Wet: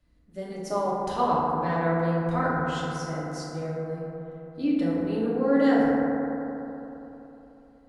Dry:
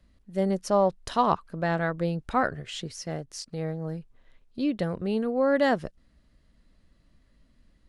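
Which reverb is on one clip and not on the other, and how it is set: FDN reverb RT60 3.4 s, high-frequency decay 0.25×, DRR -8 dB; trim -8.5 dB

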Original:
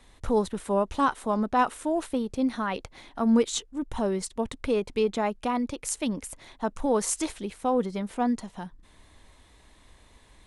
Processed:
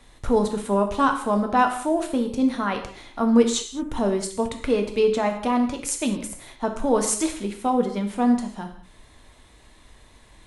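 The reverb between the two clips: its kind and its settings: gated-style reverb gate 240 ms falling, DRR 4 dB; trim +3 dB

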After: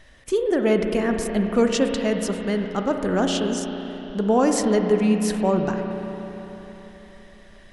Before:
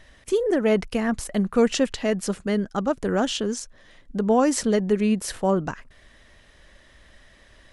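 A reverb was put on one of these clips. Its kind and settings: spring tank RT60 3.9 s, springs 33/55 ms, chirp 70 ms, DRR 4 dB

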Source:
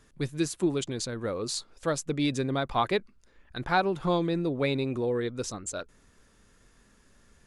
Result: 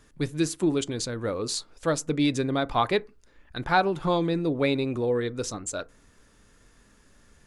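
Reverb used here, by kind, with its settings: FDN reverb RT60 0.3 s, low-frequency decay 1×, high-frequency decay 0.45×, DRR 15 dB; trim +2.5 dB

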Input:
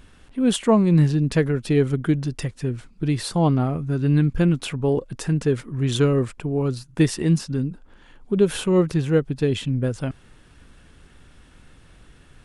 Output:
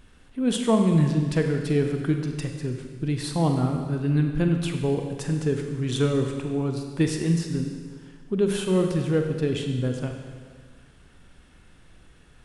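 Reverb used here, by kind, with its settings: Schroeder reverb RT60 1.7 s, combs from 32 ms, DRR 4 dB; trim -4.5 dB

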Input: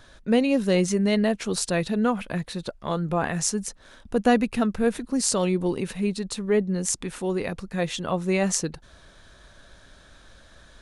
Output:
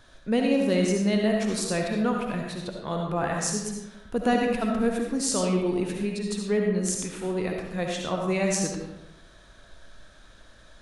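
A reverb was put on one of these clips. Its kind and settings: algorithmic reverb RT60 1 s, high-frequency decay 0.65×, pre-delay 30 ms, DRR 0.5 dB; trim -4 dB

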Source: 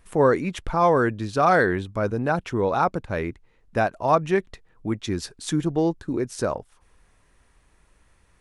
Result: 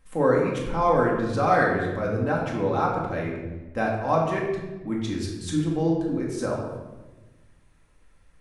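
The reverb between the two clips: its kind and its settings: simulated room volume 670 m³, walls mixed, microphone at 2.1 m; trim -7 dB

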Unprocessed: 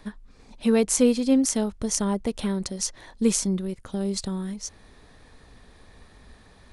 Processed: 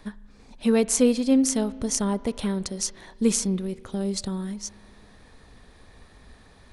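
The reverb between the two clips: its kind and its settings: spring tank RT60 2.2 s, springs 34 ms, chirp 50 ms, DRR 17.5 dB

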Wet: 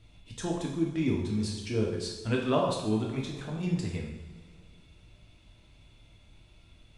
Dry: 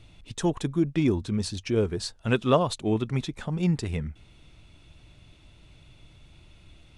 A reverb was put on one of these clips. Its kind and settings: two-slope reverb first 0.86 s, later 2.9 s, from -18 dB, DRR -2 dB; trim -8 dB

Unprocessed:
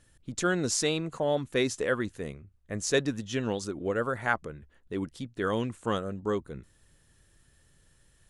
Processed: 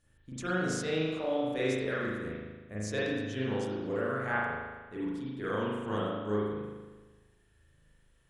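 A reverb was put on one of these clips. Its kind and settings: spring tank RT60 1.3 s, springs 38 ms, chirp 75 ms, DRR -8.5 dB; trim -11.5 dB

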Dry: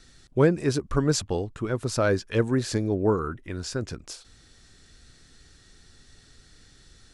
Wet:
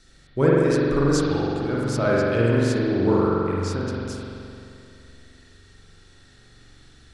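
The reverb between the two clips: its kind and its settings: spring tank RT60 2.6 s, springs 43 ms, chirp 25 ms, DRR -6 dB; trim -2.5 dB

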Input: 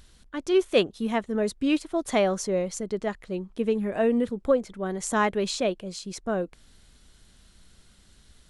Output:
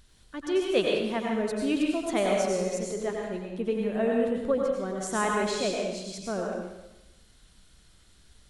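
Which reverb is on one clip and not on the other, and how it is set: plate-style reverb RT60 1 s, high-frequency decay 1×, pre-delay 80 ms, DRR -1.5 dB; trim -5 dB

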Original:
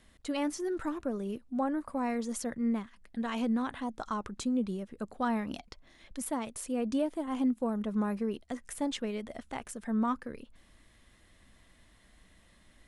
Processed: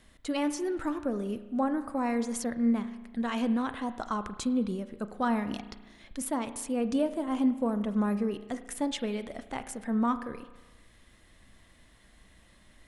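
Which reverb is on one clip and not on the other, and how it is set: spring tank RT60 1.2 s, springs 34 ms, chirp 20 ms, DRR 11 dB; trim +2.5 dB

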